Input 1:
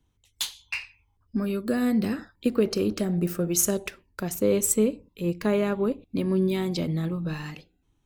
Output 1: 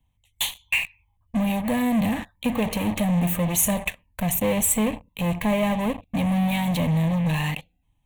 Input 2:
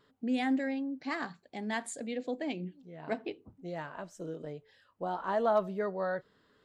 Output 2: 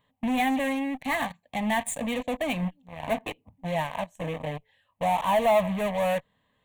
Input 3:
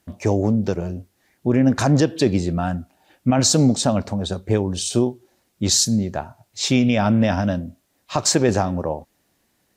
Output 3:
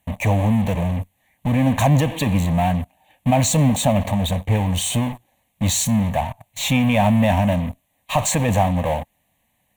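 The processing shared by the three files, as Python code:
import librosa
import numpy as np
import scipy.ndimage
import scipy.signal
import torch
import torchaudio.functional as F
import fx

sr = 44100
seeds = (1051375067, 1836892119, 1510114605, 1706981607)

p1 = fx.fuzz(x, sr, gain_db=41.0, gate_db=-44.0)
p2 = x + (p1 * librosa.db_to_amplitude(-11.0))
p3 = fx.fixed_phaser(p2, sr, hz=1400.0, stages=6)
y = p3 * librosa.db_to_amplitude(2.0)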